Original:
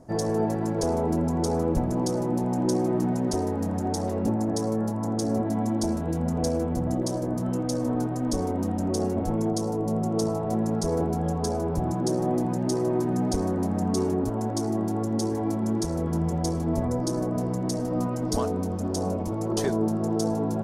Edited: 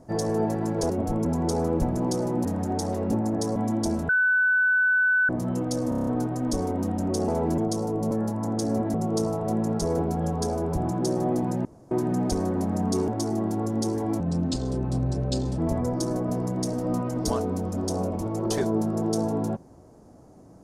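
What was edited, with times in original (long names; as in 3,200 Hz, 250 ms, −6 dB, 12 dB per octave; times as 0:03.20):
0:00.90–0:01.20: swap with 0:09.08–0:09.43
0:02.40–0:03.60: remove
0:04.71–0:05.54: move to 0:09.96
0:06.07–0:07.27: beep over 1,500 Hz −18 dBFS
0:07.87: stutter 0.03 s, 7 plays
0:12.67–0:12.93: fill with room tone
0:14.10–0:14.45: remove
0:15.57–0:16.65: play speed 78%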